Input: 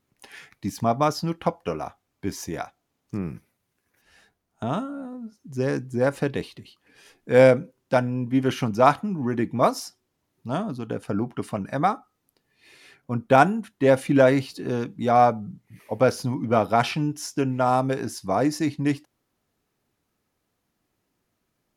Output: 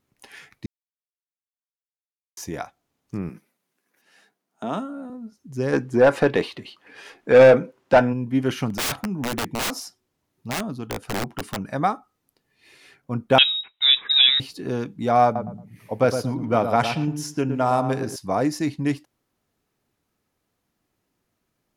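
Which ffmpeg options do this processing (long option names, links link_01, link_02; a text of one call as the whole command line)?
ffmpeg -i in.wav -filter_complex "[0:a]asettb=1/sr,asplit=3[link_01][link_02][link_03];[link_01]atrim=end=3.294[link_04];[link_02]atrim=start=3.29:end=5.1,asetpts=PTS-STARTPTS,afade=type=in:duration=0.004:curve=qsin,afade=type=out:start_time=1.806:duration=0.004:curve=qsin,highpass=frequency=180:width=0.5412,highpass=frequency=180:width=1.3066[link_05];[link_03]atrim=start=5.096[link_06];[link_04][link_05]acrossfade=duration=0.004:curve1=hsin:curve2=qsin[link_07];[link_07][link_06]acrossfade=duration=0.004:curve1=qsin:curve2=hsin,asplit=3[link_08][link_09][link_10];[link_08]afade=type=out:start_time=5.72:duration=0.02[link_11];[link_09]asplit=2[link_12][link_13];[link_13]highpass=frequency=720:poles=1,volume=21dB,asoftclip=type=tanh:threshold=-3dB[link_14];[link_12][link_14]amix=inputs=2:normalize=0,lowpass=frequency=1600:poles=1,volume=-6dB,afade=type=in:start_time=5.72:duration=0.02,afade=type=out:start_time=8.12:duration=0.02[link_15];[link_10]afade=type=in:start_time=8.12:duration=0.02[link_16];[link_11][link_15][link_16]amix=inputs=3:normalize=0,asplit=3[link_17][link_18][link_19];[link_17]afade=type=out:start_time=8.7:duration=0.02[link_20];[link_18]aeval=exprs='(mod(10*val(0)+1,2)-1)/10':channel_layout=same,afade=type=in:start_time=8.7:duration=0.02,afade=type=out:start_time=11.61:duration=0.02[link_21];[link_19]afade=type=in:start_time=11.61:duration=0.02[link_22];[link_20][link_21][link_22]amix=inputs=3:normalize=0,asettb=1/sr,asplit=3[link_23][link_24][link_25];[link_23]atrim=end=13.384[link_26];[link_24]atrim=start=13.38:end=14.4,asetpts=PTS-STARTPTS,afade=type=in:duration=0.004:curve=qsin,afade=type=out:start_time=1.016:duration=0.004:curve=qsin,lowpass=frequency=3400:width_type=q:width=0.5098,lowpass=frequency=3400:width_type=q:width=0.6013,lowpass=frequency=3400:width_type=q:width=0.9,lowpass=frequency=3400:width_type=q:width=2.563,afreqshift=-4000[link_27];[link_25]atrim=start=14.396[link_28];[link_26][link_27]acrossfade=duration=0.004:curve1=hsin:curve2=qsin[link_29];[link_29][link_28]acrossfade=duration=0.004:curve1=qsin:curve2=hsin,asettb=1/sr,asplit=3[link_30][link_31][link_32];[link_30]atrim=end=15.244[link_33];[link_31]atrim=start=15.24:end=18.16,asetpts=PTS-STARTPTS,afade=type=in:duration=0.004:curve=qsin,afade=type=out:start_time=2.916:duration=0.004:curve=qsin,asplit=2[link_34][link_35];[link_35]adelay=113,lowpass=frequency=1200:poles=1,volume=-7dB,asplit=2[link_36][link_37];[link_37]adelay=113,lowpass=frequency=1200:poles=1,volume=0.28,asplit=2[link_38][link_39];[link_39]adelay=113,lowpass=frequency=1200:poles=1,volume=0.28[link_40];[link_34][link_36][link_38][link_40]amix=inputs=4:normalize=0,atrim=end_sample=128772[link_41];[link_32]atrim=start=18.156[link_42];[link_33][link_41]acrossfade=duration=0.004:curve1=hsin:curve2=qsin[link_43];[link_43][link_42]acrossfade=duration=0.004:curve1=qsin:curve2=hsin,asplit=3[link_44][link_45][link_46];[link_44]atrim=end=0.66,asetpts=PTS-STARTPTS,afade=type=out:start_time=0.656:duration=0.004:curve=hsin[link_47];[link_45]atrim=start=0.66:end=2.37,asetpts=PTS-STARTPTS,volume=0[link_48];[link_46]atrim=start=2.37,asetpts=PTS-STARTPTS,afade=type=in:duration=0.004:curve=hsin[link_49];[link_47][link_48][link_49]concat=n=3:v=0:a=1" out.wav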